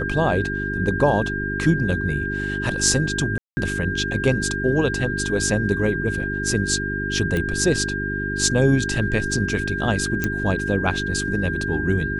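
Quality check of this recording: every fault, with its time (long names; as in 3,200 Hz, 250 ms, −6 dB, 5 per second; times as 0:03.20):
mains hum 50 Hz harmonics 8 −28 dBFS
whistle 1,600 Hz −26 dBFS
0:03.38–0:03.57: drop-out 190 ms
0:07.37: click −12 dBFS
0:10.24: click −8 dBFS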